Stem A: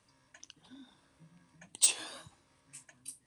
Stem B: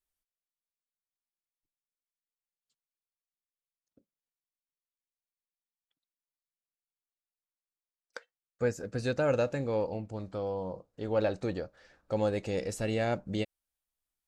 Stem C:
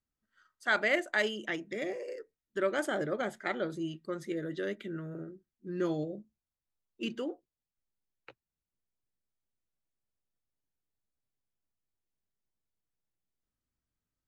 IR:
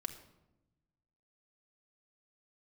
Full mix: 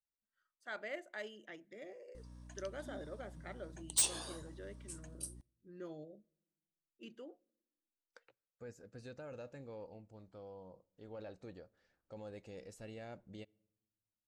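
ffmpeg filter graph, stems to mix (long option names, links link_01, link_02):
-filter_complex "[0:a]equalizer=frequency=2200:width_type=o:width=1.2:gain=-10,aeval=exprs='val(0)+0.002*(sin(2*PI*60*n/s)+sin(2*PI*2*60*n/s)/2+sin(2*PI*3*60*n/s)/3+sin(2*PI*4*60*n/s)/4+sin(2*PI*5*60*n/s)/5)':channel_layout=same,adelay=2150,volume=1dB,asplit=2[link_01][link_02];[link_02]volume=-20.5dB[link_03];[1:a]alimiter=limit=-23dB:level=0:latency=1:release=13,volume=-18.5dB,asplit=2[link_04][link_05];[link_05]volume=-18dB[link_06];[2:a]equalizer=frequency=590:width=2.1:gain=5,volume=-18dB,asplit=2[link_07][link_08];[link_08]volume=-19.5dB[link_09];[3:a]atrim=start_sample=2205[link_10];[link_03][link_06][link_09]amix=inputs=3:normalize=0[link_11];[link_11][link_10]afir=irnorm=-1:irlink=0[link_12];[link_01][link_04][link_07][link_12]amix=inputs=4:normalize=0,asoftclip=type=hard:threshold=-25dB"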